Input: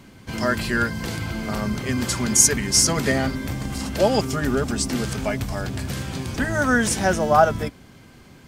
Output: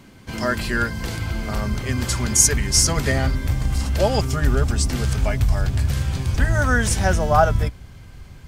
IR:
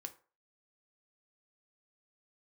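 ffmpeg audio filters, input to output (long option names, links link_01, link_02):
-af "asubboost=boost=8.5:cutoff=83"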